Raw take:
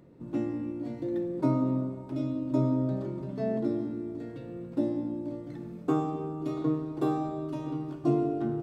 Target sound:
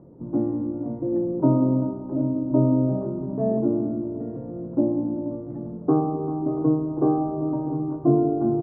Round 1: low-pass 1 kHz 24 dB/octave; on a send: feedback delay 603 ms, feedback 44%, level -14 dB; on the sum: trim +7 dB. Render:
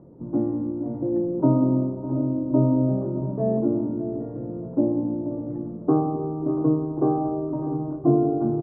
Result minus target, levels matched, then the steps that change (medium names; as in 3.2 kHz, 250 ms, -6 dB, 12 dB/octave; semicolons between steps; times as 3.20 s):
echo 213 ms late
change: feedback delay 390 ms, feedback 44%, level -14 dB